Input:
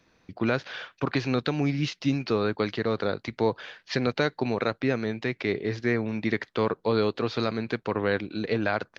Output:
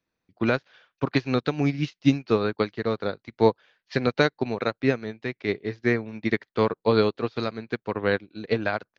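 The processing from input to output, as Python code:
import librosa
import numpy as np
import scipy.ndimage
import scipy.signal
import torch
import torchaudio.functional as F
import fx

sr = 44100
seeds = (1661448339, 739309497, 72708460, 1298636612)

y = fx.upward_expand(x, sr, threshold_db=-38.0, expansion=2.5)
y = y * 10.0 ** (7.5 / 20.0)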